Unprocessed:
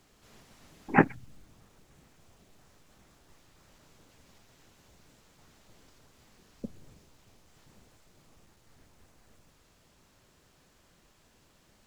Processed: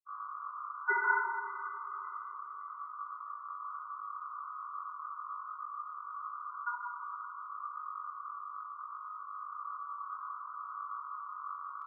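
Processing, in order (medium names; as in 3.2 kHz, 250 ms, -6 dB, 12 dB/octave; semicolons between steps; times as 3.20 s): level rider gain up to 5.5 dB; loudest bins only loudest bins 2; hum 50 Hz, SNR 13 dB; high-order bell 1.2 kHz -9.5 dB; level held to a coarse grid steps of 20 dB; granulator, pitch spread up and down by 0 st; ring modulator 1.2 kHz; high-pass 410 Hz; echo whose repeats swap between lows and highs 284 ms, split 1.2 kHz, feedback 54%, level -13 dB; simulated room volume 1900 m³, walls mixed, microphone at 3.5 m; trim +14.5 dB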